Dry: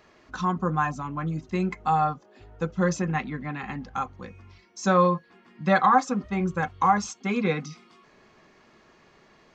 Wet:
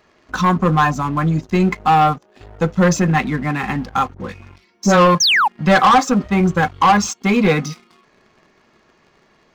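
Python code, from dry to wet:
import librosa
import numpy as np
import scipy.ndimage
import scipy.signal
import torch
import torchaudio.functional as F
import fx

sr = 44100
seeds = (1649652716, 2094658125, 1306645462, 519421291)

p1 = fx.dispersion(x, sr, late='highs', ms=65.0, hz=1100.0, at=(4.14, 5.15))
p2 = 10.0 ** (-18.5 / 20.0) * np.tanh(p1 / 10.0 ** (-18.5 / 20.0))
p3 = p1 + (p2 * 10.0 ** (-6.0 / 20.0))
p4 = fx.spec_paint(p3, sr, seeds[0], shape='fall', start_s=5.2, length_s=0.28, low_hz=760.0, high_hz=6700.0, level_db=-22.0)
p5 = fx.leveller(p4, sr, passes=2)
y = p5 * 10.0 ** (1.5 / 20.0)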